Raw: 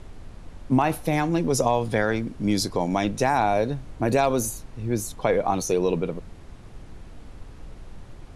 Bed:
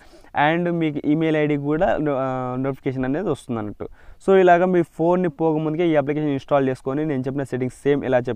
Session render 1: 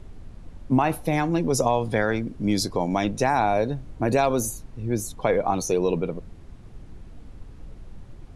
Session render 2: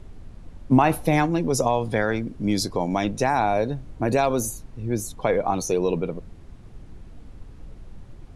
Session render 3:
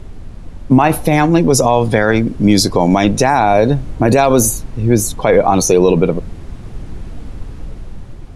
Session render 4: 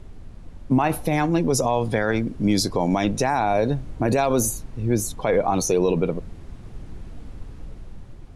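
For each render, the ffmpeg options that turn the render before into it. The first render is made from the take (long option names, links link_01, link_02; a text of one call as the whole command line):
ffmpeg -i in.wav -af "afftdn=noise_reduction=6:noise_floor=-44" out.wav
ffmpeg -i in.wav -filter_complex "[0:a]asplit=3[link_01][link_02][link_03];[link_01]atrim=end=0.712[link_04];[link_02]atrim=start=0.708:end=1.262,asetpts=PTS-STARTPTS,volume=3.5dB[link_05];[link_03]atrim=start=1.258[link_06];[link_04][link_05]acrossfade=duration=0.004:curve1=hsin:curve2=hsin[link_07];[link_07][link_06]acrossfade=duration=0.004:curve1=hsin:curve2=hsin" out.wav
ffmpeg -i in.wav -af "dynaudnorm=framelen=470:gausssize=5:maxgain=5dB,alimiter=level_in=10.5dB:limit=-1dB:release=50:level=0:latency=1" out.wav
ffmpeg -i in.wav -af "volume=-9.5dB" out.wav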